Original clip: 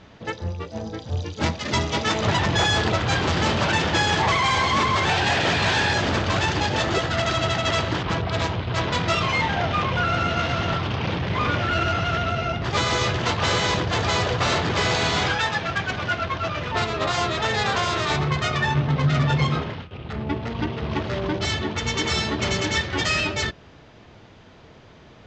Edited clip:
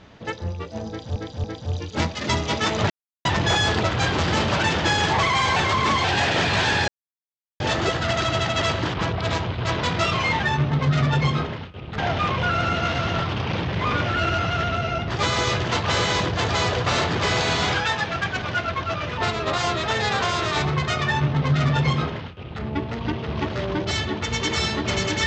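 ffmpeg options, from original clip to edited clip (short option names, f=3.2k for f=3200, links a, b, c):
-filter_complex "[0:a]asplit=10[a][b][c][d][e][f][g][h][i][j];[a]atrim=end=1.162[k];[b]atrim=start=0.878:end=1.162[l];[c]atrim=start=0.878:end=2.34,asetpts=PTS-STARTPTS,afade=t=out:st=1.458:d=0.004:c=hsin,apad=pad_dur=0.35[m];[d]atrim=start=2.34:end=4.652,asetpts=PTS-STARTPTS,afade=t=in:d=0.004:c=hsin[n];[e]atrim=start=4.648:end=5.132,asetpts=PTS-STARTPTS,areverse[o];[f]atrim=start=5.128:end=5.97,asetpts=PTS-STARTPTS,afade=t=out:st=0.838:d=0.004:c=hsin[p];[g]atrim=start=5.97:end=6.69,asetpts=PTS-STARTPTS,volume=0[q];[h]atrim=start=6.69:end=9.522,asetpts=PTS-STARTPTS,afade=t=in:d=0.004:c=hsin[r];[i]atrim=start=18.598:end=20.152[s];[j]atrim=start=9.518[t];[k][l]acrossfade=d=0.004:c1=hsin:c2=hsin[u];[m][n]concat=n=2:v=0:a=1[v];[u][v]acrossfade=d=0.004:c1=hsin:c2=hsin[w];[w][o]acrossfade=d=0.004:c1=hsin:c2=hsin[x];[p][q][r]concat=n=3:v=0:a=1[y];[x][y]acrossfade=d=0.004:c1=hsin:c2=hsin[z];[z][s]acrossfade=d=0.004:c1=hsin:c2=hsin[aa];[aa][t]acrossfade=d=0.004:c1=hsin:c2=hsin"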